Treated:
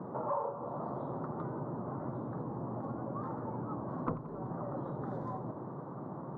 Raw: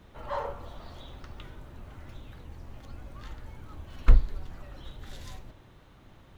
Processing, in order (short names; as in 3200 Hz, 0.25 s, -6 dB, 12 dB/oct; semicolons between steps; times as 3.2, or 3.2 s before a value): elliptic band-pass 140–1100 Hz, stop band 40 dB; compressor 4:1, threshold -52 dBFS, peak gain reduction 19 dB; on a send: split-band echo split 760 Hz, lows 0.167 s, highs 88 ms, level -15.5 dB; on the sum: gain +16.5 dB